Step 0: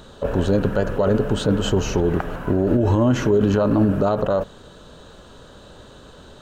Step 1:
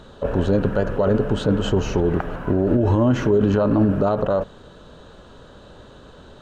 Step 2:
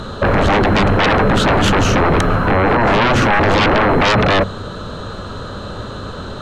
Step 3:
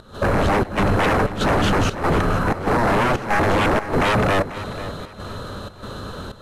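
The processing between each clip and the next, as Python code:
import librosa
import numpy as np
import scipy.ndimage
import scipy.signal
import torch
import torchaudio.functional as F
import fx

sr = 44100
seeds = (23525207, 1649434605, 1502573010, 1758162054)

y1 = fx.lowpass(x, sr, hz=3300.0, slope=6)
y2 = fx.graphic_eq_31(y1, sr, hz=(100, 200, 1250), db=(10, 4, 8))
y2 = fx.fold_sine(y2, sr, drive_db=18, ceiling_db=-2.5)
y2 = y2 + 10.0 ** (-36.0 / 20.0) * np.sin(2.0 * np.pi * 4100.0 * np.arange(len(y2)) / sr)
y2 = y2 * 10.0 ** (-7.0 / 20.0)
y3 = fx.cvsd(y2, sr, bps=64000)
y3 = fx.volume_shaper(y3, sr, bpm=95, per_beat=1, depth_db=-18, release_ms=142.0, shape='slow start')
y3 = fx.echo_feedback(y3, sr, ms=491, feedback_pct=31, wet_db=-14.5)
y3 = y3 * 10.0 ** (-4.5 / 20.0)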